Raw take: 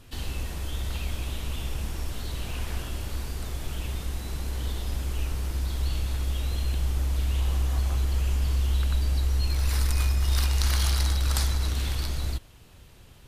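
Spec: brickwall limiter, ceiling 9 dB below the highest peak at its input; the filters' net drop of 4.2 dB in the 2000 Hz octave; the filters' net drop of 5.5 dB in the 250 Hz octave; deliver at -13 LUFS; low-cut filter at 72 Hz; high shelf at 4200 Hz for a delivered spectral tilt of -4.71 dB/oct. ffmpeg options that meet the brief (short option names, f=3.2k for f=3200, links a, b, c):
-af "highpass=72,equalizer=f=250:t=o:g=-8,equalizer=f=2k:t=o:g=-4,highshelf=f=4.2k:g=-6,volume=21dB,alimiter=limit=-2.5dB:level=0:latency=1"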